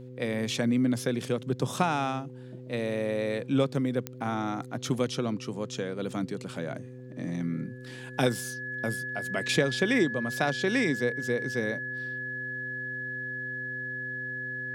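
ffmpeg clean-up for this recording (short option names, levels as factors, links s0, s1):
-af "adeclick=t=4,bandreject=f=126.6:t=h:w=4,bandreject=f=253.2:t=h:w=4,bandreject=f=379.8:t=h:w=4,bandreject=f=506.4:t=h:w=4,bandreject=f=1700:w=30"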